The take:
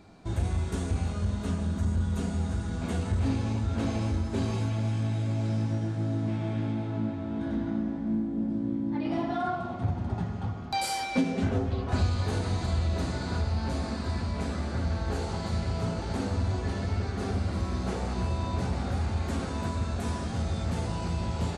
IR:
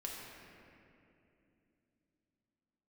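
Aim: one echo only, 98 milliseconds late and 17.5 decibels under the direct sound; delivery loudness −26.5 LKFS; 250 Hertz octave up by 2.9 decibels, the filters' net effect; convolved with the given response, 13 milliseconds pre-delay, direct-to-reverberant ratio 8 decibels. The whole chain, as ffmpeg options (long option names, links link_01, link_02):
-filter_complex "[0:a]equalizer=frequency=250:width_type=o:gain=3.5,aecho=1:1:98:0.133,asplit=2[link_01][link_02];[1:a]atrim=start_sample=2205,adelay=13[link_03];[link_02][link_03]afir=irnorm=-1:irlink=0,volume=-7.5dB[link_04];[link_01][link_04]amix=inputs=2:normalize=0,volume=1.5dB"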